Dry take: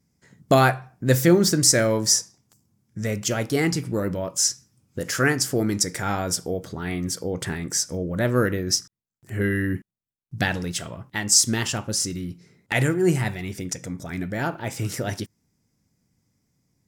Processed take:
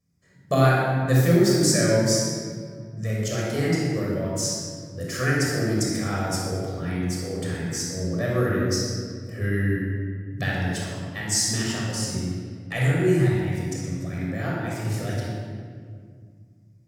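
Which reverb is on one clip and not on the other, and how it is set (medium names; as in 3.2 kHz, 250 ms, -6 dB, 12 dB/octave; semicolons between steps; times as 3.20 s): simulated room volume 3600 m³, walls mixed, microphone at 6 m; trim -10.5 dB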